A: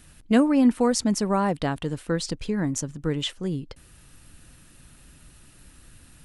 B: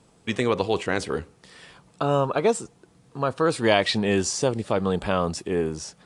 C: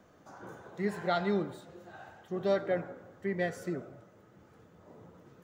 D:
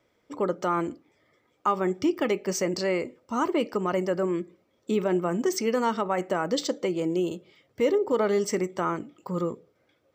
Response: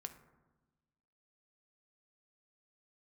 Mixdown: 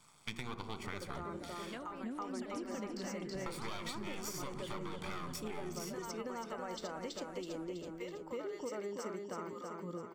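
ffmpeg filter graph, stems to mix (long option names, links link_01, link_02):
-filter_complex "[0:a]bass=frequency=250:gain=13,treble=frequency=4000:gain=-5,adelay=1400,volume=-13.5dB,asplit=2[link_01][link_02];[link_02]volume=-14dB[link_03];[1:a]aeval=exprs='max(val(0),0)':channel_layout=same,aecho=1:1:0.9:0.56,volume=-0.5dB,asplit=3[link_04][link_05][link_06];[link_04]atrim=end=1.79,asetpts=PTS-STARTPTS,afade=type=out:start_time=1.786:duration=0.004:curve=hsin[link_07];[link_05]atrim=start=1.79:end=3.46,asetpts=PTS-STARTPTS,volume=0[link_08];[link_06]atrim=start=3.46,asetpts=PTS-STARTPTS,afade=type=in:duration=0.004:curve=hsin[link_09];[link_07][link_08][link_09]concat=n=3:v=0:a=1,asplit=2[link_10][link_11];[link_11]volume=-5.5dB[link_12];[2:a]volume=-17dB,asplit=2[link_13][link_14];[link_14]volume=-6.5dB[link_15];[3:a]adelay=200,volume=-11.5dB,asplit=2[link_16][link_17];[link_17]volume=-3dB[link_18];[link_01][link_10][link_16]amix=inputs=3:normalize=0,highpass=810,acompressor=threshold=-42dB:ratio=6,volume=0dB[link_19];[4:a]atrim=start_sample=2205[link_20];[link_12][link_20]afir=irnorm=-1:irlink=0[link_21];[link_03][link_15][link_18]amix=inputs=3:normalize=0,aecho=0:1:326|652|978|1304|1630|1956|2282:1|0.51|0.26|0.133|0.0677|0.0345|0.0176[link_22];[link_13][link_19][link_21][link_22]amix=inputs=4:normalize=0,acompressor=threshold=-38dB:ratio=6"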